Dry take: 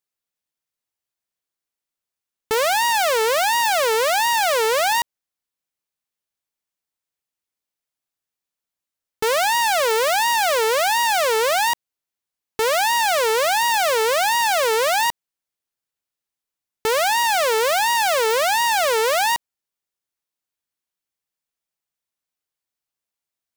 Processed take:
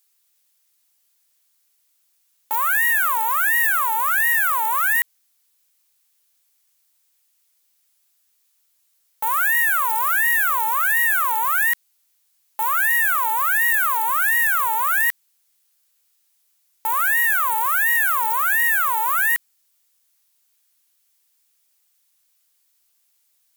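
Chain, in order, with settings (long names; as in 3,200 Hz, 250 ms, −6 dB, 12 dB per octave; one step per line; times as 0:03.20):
sine wavefolder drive 12 dB, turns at −13.5 dBFS
spectral tilt +3.5 dB per octave
level −6 dB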